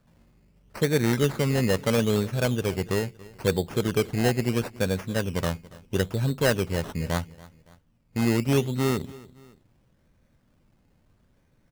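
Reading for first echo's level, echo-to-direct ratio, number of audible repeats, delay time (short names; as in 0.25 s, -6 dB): -21.0 dB, -20.0 dB, 2, 0.282 s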